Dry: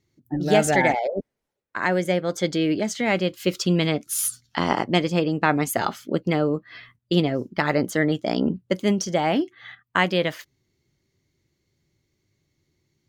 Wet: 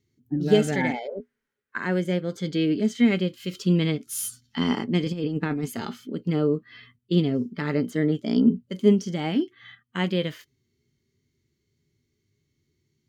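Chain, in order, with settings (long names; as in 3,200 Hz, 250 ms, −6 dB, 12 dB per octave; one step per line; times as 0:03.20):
0:01.08–0:01.78: parametric band 1,600 Hz +13 dB 1.2 octaves
harmonic and percussive parts rebalanced percussive −12 dB
parametric band 680 Hz −9 dB 1.1 octaves
0:05.03–0:05.66: compressor whose output falls as the input rises −27 dBFS, ratio −0.5
hollow resonant body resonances 240/420/3,100 Hz, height 12 dB, ringing for 100 ms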